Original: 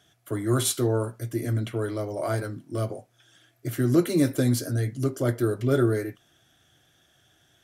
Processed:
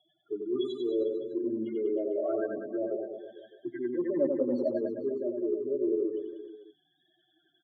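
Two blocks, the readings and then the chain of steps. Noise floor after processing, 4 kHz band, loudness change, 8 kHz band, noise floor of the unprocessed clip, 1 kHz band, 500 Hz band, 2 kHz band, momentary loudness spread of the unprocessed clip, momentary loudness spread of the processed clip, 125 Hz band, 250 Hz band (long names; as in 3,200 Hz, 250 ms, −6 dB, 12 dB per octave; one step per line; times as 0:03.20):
−74 dBFS, below −10 dB, −5.5 dB, below −40 dB, −64 dBFS, −12.0 dB, −1.0 dB, −14.0 dB, 11 LU, 13 LU, −29.0 dB, −5.5 dB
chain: spectral peaks only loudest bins 8
four-pole ladder high-pass 270 Hz, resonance 40%
comb filter 5.1 ms, depth 62%
reversed playback
downward compressor 6 to 1, threshold −37 dBFS, peak gain reduction 18 dB
reversed playback
gain on a spectral selection 0:03.52–0:04.78, 480–2,000 Hz +12 dB
low-pass filter 3,300 Hz 24 dB per octave
reverse bouncing-ball delay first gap 90 ms, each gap 1.15×, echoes 5
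level +7.5 dB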